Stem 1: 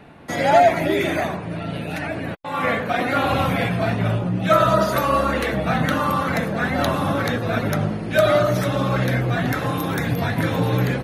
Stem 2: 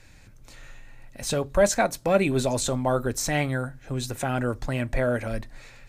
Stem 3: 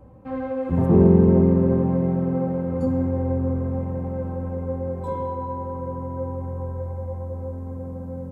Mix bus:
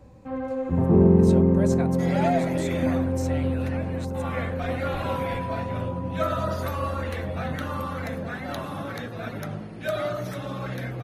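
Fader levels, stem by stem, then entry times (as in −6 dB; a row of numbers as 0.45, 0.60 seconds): −11.5, −13.5, −2.0 decibels; 1.70, 0.00, 0.00 seconds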